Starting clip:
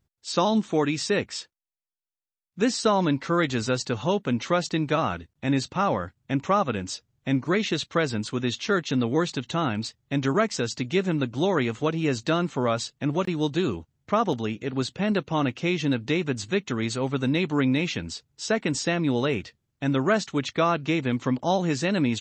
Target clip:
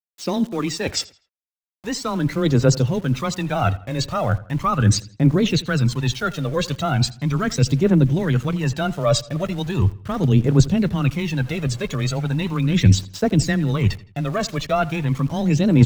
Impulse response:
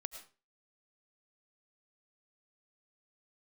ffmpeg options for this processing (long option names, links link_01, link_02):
-filter_complex "[0:a]acontrast=46,equalizer=frequency=320:width_type=o:width=2.2:gain=5.5,atempo=1.4,areverse,acompressor=threshold=-22dB:ratio=16,areverse,aphaser=in_gain=1:out_gain=1:delay=1.9:decay=0.62:speed=0.38:type=triangular,afreqshift=14,asubboost=boost=10:cutoff=89,aeval=exprs='val(0)*gte(abs(val(0)),0.00841)':channel_layout=same,asplit=2[link_01][link_02];[link_02]adelay=82,lowpass=frequency=4200:poles=1,volume=-18.5dB,asplit=2[link_03][link_04];[link_04]adelay=82,lowpass=frequency=4200:poles=1,volume=0.4,asplit=2[link_05][link_06];[link_06]adelay=82,lowpass=frequency=4200:poles=1,volume=0.4[link_07];[link_01][link_03][link_05][link_07]amix=inputs=4:normalize=0,volume=4dB"